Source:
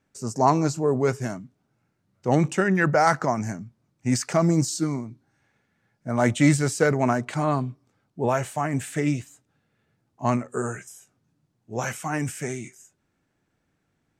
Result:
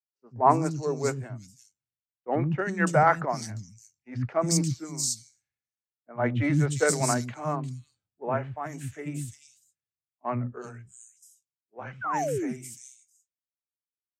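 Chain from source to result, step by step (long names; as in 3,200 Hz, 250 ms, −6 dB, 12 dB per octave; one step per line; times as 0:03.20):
parametric band 67 Hz +5.5 dB 1.2 octaves
three-band delay without the direct sound mids, lows, highs 90/350 ms, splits 270/3,400 Hz
sound drawn into the spectrogram fall, 0:12.01–0:12.53, 220–1,600 Hz −23 dBFS
multiband upward and downward expander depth 100%
level −5.5 dB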